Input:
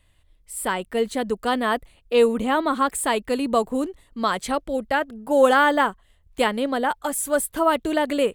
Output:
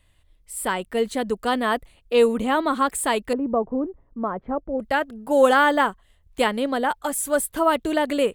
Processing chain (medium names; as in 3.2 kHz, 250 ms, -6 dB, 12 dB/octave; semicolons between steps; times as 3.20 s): 3.33–4.80 s: Bessel low-pass 830 Hz, order 4